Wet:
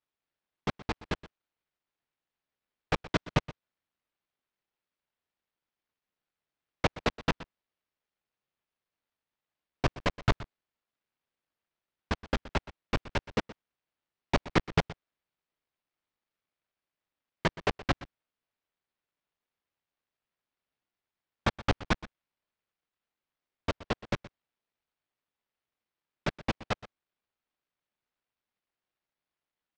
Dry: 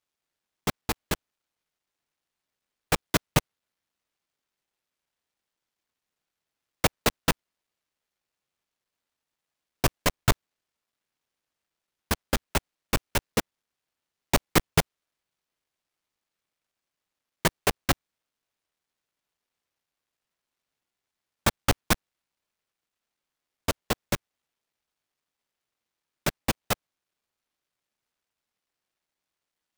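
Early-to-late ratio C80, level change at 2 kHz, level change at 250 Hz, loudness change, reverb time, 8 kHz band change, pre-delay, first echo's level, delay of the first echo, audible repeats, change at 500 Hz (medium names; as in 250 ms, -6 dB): no reverb, -4.0 dB, -3.0 dB, -5.0 dB, no reverb, -18.0 dB, no reverb, -17.5 dB, 122 ms, 1, -3.5 dB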